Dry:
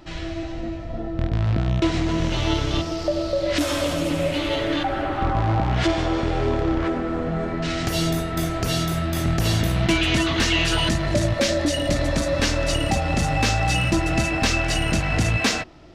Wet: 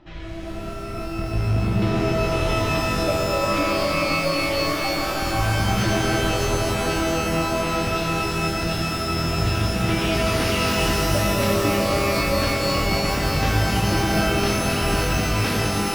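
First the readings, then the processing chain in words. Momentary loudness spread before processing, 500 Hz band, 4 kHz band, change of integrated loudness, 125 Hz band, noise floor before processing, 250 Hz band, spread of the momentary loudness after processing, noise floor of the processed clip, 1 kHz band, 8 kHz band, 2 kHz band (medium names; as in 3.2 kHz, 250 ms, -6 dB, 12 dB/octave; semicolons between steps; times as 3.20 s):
6 LU, +1.5 dB, 0.0 dB, +1.0 dB, -0.5 dB, -30 dBFS, -0.5 dB, 3 LU, -30 dBFS, +3.0 dB, +1.0 dB, +1.5 dB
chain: distance through air 170 m; band-stop 4.5 kHz; pitch-shifted reverb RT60 3.9 s, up +12 st, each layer -2 dB, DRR -1 dB; trim -5 dB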